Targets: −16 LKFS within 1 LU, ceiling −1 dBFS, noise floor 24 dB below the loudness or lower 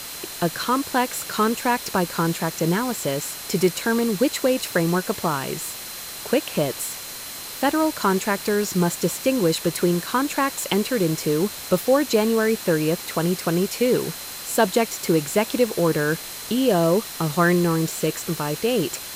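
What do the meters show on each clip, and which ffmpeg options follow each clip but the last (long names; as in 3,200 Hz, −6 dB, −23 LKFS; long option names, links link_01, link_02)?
interfering tone 4,100 Hz; level of the tone −42 dBFS; background noise floor −35 dBFS; target noise floor −47 dBFS; integrated loudness −22.5 LKFS; sample peak −5.0 dBFS; target loudness −16.0 LKFS
→ -af "bandreject=frequency=4100:width=30"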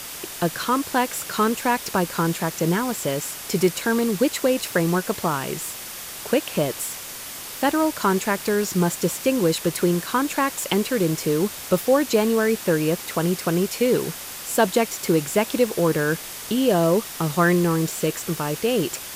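interfering tone none found; background noise floor −36 dBFS; target noise floor −47 dBFS
→ -af "afftdn=noise_reduction=11:noise_floor=-36"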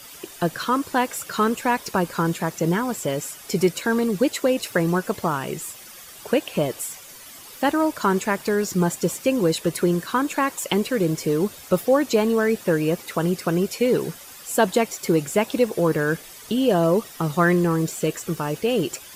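background noise floor −43 dBFS; target noise floor −47 dBFS
→ -af "afftdn=noise_reduction=6:noise_floor=-43"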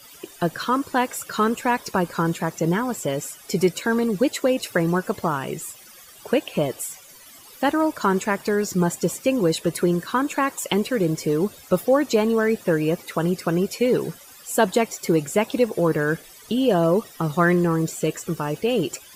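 background noise floor −46 dBFS; target noise floor −47 dBFS
→ -af "afftdn=noise_reduction=6:noise_floor=-46"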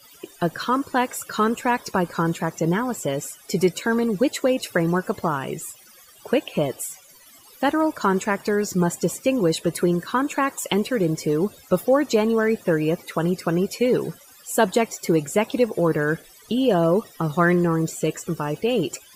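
background noise floor −50 dBFS; integrated loudness −23.0 LKFS; sample peak −5.5 dBFS; target loudness −16.0 LKFS
→ -af "volume=7dB,alimiter=limit=-1dB:level=0:latency=1"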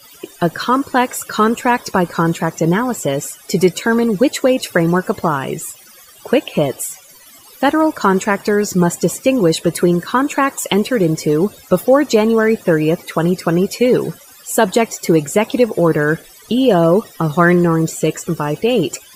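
integrated loudness −16.0 LKFS; sample peak −1.0 dBFS; background noise floor −43 dBFS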